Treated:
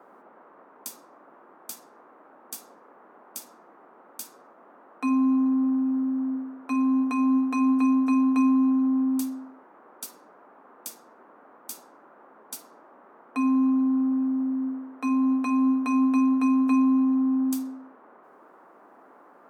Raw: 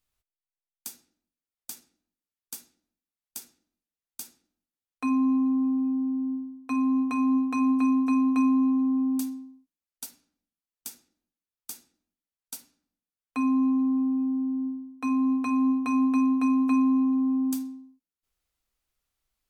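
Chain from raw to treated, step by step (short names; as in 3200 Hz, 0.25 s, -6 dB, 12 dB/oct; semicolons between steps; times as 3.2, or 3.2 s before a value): elliptic high-pass 160 Hz; band noise 230–1300 Hz -55 dBFS; gain +2 dB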